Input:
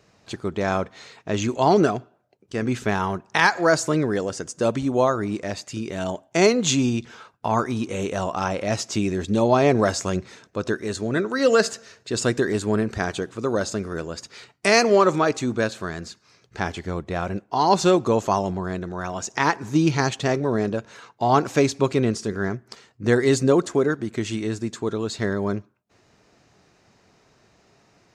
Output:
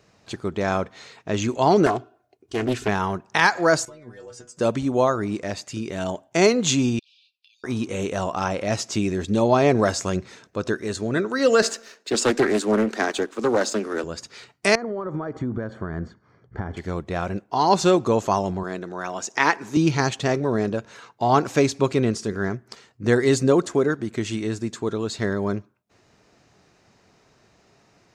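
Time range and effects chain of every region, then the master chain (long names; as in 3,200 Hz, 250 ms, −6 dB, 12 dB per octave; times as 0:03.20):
0:01.86–0:02.88: comb filter 2.8 ms, depth 73% + highs frequency-modulated by the lows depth 0.55 ms
0:03.85–0:04.57: downward compressor 12 to 1, threshold −27 dBFS + stiff-string resonator 120 Hz, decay 0.25 s, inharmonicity 0.002
0:06.99–0:07.64: linear-phase brick-wall high-pass 2,300 Hz + downward compressor 5 to 1, threshold −59 dBFS + high shelf with overshoot 5,600 Hz −9.5 dB, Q 3
0:11.62–0:14.04: Butterworth high-pass 210 Hz 72 dB per octave + leveller curve on the samples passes 1 + highs frequency-modulated by the lows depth 0.32 ms
0:14.75–0:16.77: downward compressor 20 to 1, threshold −27 dBFS + Savitzky-Golay smoothing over 41 samples + low-shelf EQ 280 Hz +8.5 dB
0:18.63–0:19.77: high-pass filter 220 Hz + dynamic equaliser 2,200 Hz, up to +5 dB, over −35 dBFS, Q 1.4
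whole clip: no processing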